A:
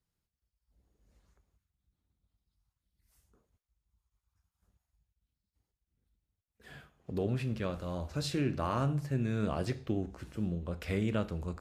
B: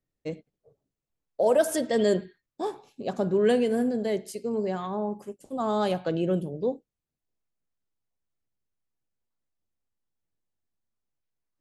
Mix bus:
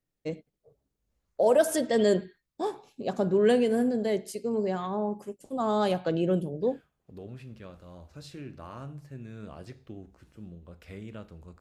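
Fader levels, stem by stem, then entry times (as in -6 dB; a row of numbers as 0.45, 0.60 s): -10.5, 0.0 dB; 0.00, 0.00 s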